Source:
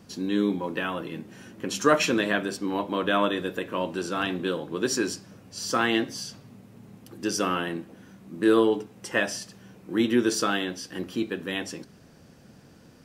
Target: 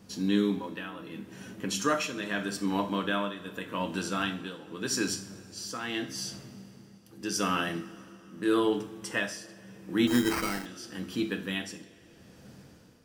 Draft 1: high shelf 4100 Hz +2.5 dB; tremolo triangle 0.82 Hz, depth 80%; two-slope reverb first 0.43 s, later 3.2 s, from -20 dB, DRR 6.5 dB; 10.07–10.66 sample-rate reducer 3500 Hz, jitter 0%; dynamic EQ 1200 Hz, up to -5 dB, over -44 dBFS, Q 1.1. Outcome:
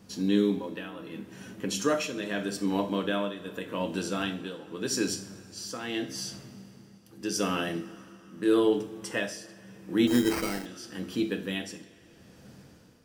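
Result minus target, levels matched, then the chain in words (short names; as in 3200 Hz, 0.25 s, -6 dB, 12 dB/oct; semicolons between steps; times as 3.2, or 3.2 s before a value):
1000 Hz band -4.0 dB
high shelf 4100 Hz +2.5 dB; tremolo triangle 0.82 Hz, depth 80%; two-slope reverb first 0.43 s, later 3.2 s, from -20 dB, DRR 6.5 dB; 10.07–10.66 sample-rate reducer 3500 Hz, jitter 0%; dynamic EQ 500 Hz, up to -5 dB, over -44 dBFS, Q 1.1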